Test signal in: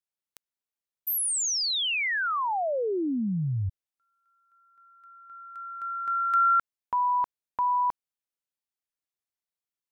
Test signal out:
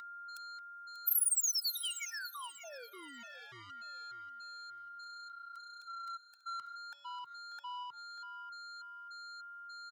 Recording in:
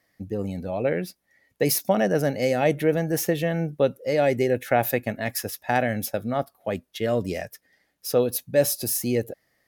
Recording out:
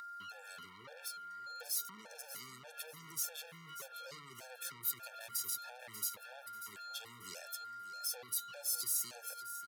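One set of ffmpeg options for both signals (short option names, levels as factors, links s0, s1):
-filter_complex "[0:a]bandreject=f=221.5:t=h:w=4,bandreject=f=443:t=h:w=4,bandreject=f=664.5:t=h:w=4,bandreject=f=886:t=h:w=4,bandreject=f=1107.5:t=h:w=4,bandreject=f=1329:t=h:w=4,bandreject=f=1550.5:t=h:w=4,bandreject=f=1772:t=h:w=4,bandreject=f=1993.5:t=h:w=4,bandreject=f=2215:t=h:w=4,bandreject=f=2436.5:t=h:w=4,bandreject=f=2658:t=h:w=4,bandreject=f=2879.5:t=h:w=4,bandreject=f=3101:t=h:w=4,bandreject=f=3322.5:t=h:w=4,bandreject=f=3544:t=h:w=4,bandreject=f=3765.5:t=h:w=4,bandreject=f=3987:t=h:w=4,bandreject=f=4208.5:t=h:w=4,aeval=exprs='val(0)+0.0251*sin(2*PI*1400*n/s)':c=same,equalizer=f=125:t=o:w=1:g=6,equalizer=f=250:t=o:w=1:g=-3,equalizer=f=500:t=o:w=1:g=6,equalizer=f=1000:t=o:w=1:g=10,equalizer=f=4000:t=o:w=1:g=9,equalizer=f=8000:t=o:w=1:g=7,acrossover=split=120|920[s0][s1][s2];[s2]alimiter=limit=0.15:level=0:latency=1:release=14[s3];[s0][s1][s3]amix=inputs=3:normalize=0,acrossover=split=270[s4][s5];[s5]acompressor=threshold=0.0316:ratio=8:attack=0.16:release=134:knee=2.83:detection=peak[s6];[s4][s6]amix=inputs=2:normalize=0,asoftclip=type=tanh:threshold=0.0299,aderivative,aecho=1:1:589|1178|1767:0.224|0.0649|0.0188,afftfilt=real='re*gt(sin(2*PI*1.7*pts/sr)*(1-2*mod(floor(b*sr/1024/460),2)),0)':imag='im*gt(sin(2*PI*1.7*pts/sr)*(1-2*mod(floor(b*sr/1024/460),2)),0)':win_size=1024:overlap=0.75,volume=2.11"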